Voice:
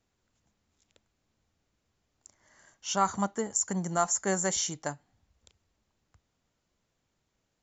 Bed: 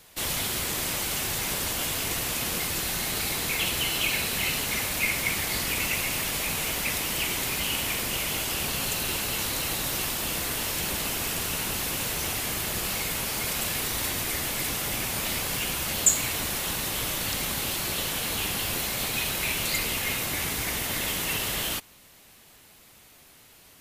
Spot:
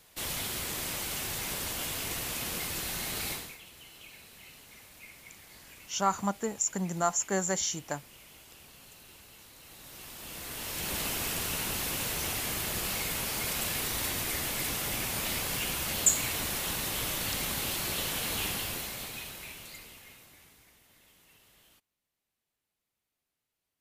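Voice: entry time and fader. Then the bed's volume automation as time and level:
3.05 s, −1.0 dB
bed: 0:03.32 −6 dB
0:03.61 −24.5 dB
0:09.56 −24.5 dB
0:10.98 −3.5 dB
0:18.47 −3.5 dB
0:20.80 −33 dB

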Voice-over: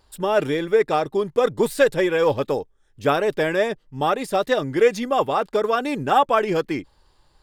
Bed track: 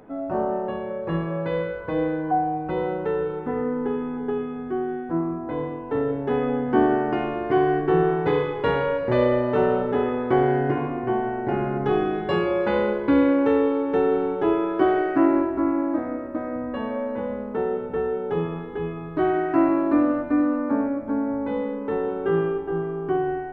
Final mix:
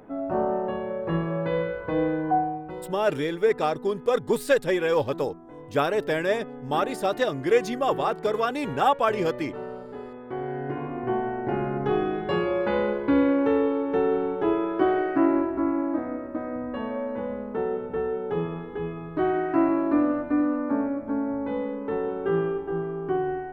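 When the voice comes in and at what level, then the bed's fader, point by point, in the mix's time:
2.70 s, −4.0 dB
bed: 0:02.36 −0.5 dB
0:02.94 −15.5 dB
0:10.21 −15.5 dB
0:11.06 −2.5 dB

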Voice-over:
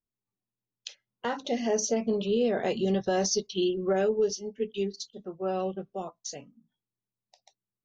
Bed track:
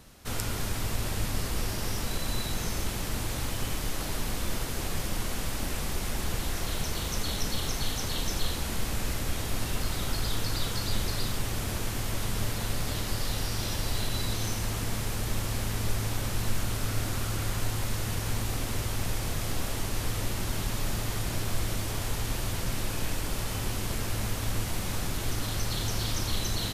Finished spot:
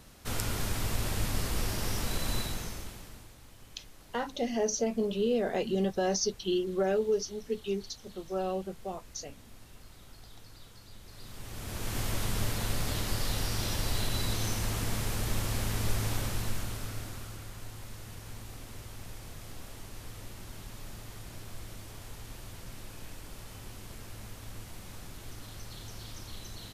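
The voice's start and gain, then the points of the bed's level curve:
2.90 s, −2.5 dB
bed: 0:02.38 −1 dB
0:03.37 −22 dB
0:11.01 −22 dB
0:11.98 −1 dB
0:16.15 −1 dB
0:17.49 −14 dB

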